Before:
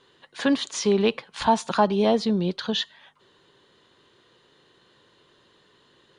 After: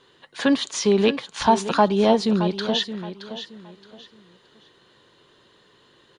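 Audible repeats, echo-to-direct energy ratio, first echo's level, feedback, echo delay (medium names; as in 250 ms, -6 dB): 3, -11.0 dB, -11.5 dB, 28%, 621 ms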